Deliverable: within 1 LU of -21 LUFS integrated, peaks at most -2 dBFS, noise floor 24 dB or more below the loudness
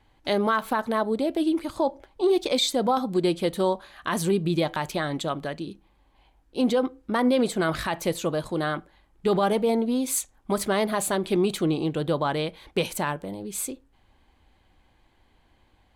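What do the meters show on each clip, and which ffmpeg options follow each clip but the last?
loudness -26.0 LUFS; peak level -13.5 dBFS; loudness target -21.0 LUFS
-> -af "volume=1.78"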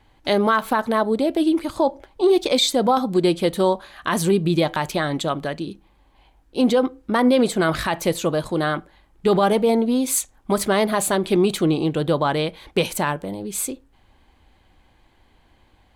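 loudness -21.0 LUFS; peak level -8.5 dBFS; noise floor -59 dBFS

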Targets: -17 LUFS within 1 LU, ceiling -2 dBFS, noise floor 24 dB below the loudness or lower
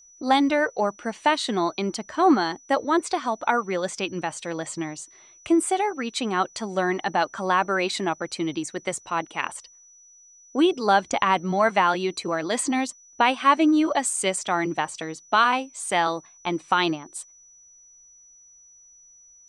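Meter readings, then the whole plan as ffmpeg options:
steady tone 5.9 kHz; tone level -50 dBFS; loudness -24.0 LUFS; peak level -6.0 dBFS; loudness target -17.0 LUFS
-> -af "bandreject=f=5900:w=30"
-af "volume=2.24,alimiter=limit=0.794:level=0:latency=1"

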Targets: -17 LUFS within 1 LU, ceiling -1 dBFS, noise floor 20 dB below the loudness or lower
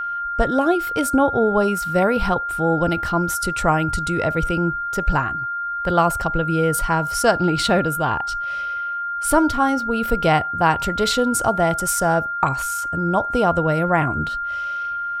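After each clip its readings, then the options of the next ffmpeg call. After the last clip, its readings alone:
steady tone 1.4 kHz; tone level -23 dBFS; loudness -20.0 LUFS; peak level -1.5 dBFS; loudness target -17.0 LUFS
-> -af "bandreject=f=1400:w=30"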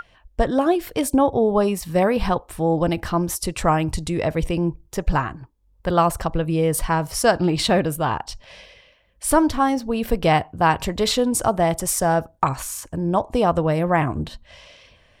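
steady tone not found; loudness -21.5 LUFS; peak level -2.0 dBFS; loudness target -17.0 LUFS
-> -af "volume=1.68,alimiter=limit=0.891:level=0:latency=1"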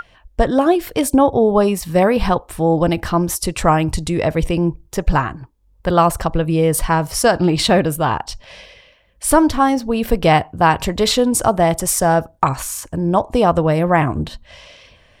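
loudness -17.0 LUFS; peak level -1.0 dBFS; noise floor -54 dBFS

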